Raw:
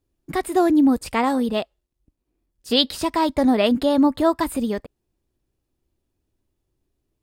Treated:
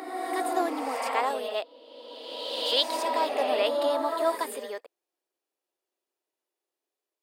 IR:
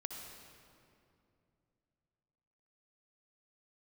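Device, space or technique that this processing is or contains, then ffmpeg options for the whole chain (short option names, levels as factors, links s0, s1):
ghost voice: -filter_complex "[0:a]areverse[s0];[1:a]atrim=start_sample=2205[s1];[s0][s1]afir=irnorm=-1:irlink=0,areverse,highpass=f=460:w=0.5412,highpass=f=460:w=1.3066,volume=0.794"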